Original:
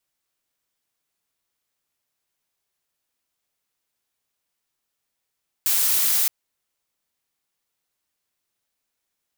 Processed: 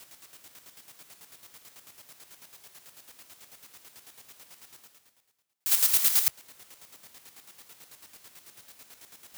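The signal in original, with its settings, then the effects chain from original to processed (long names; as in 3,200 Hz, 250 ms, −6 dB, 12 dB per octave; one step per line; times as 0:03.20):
noise blue, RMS −20 dBFS 0.62 s
high-pass filter 74 Hz
reversed playback
upward compression, threshold −24 dBFS
reversed playback
square-wave tremolo 9.1 Hz, depth 60%, duty 35%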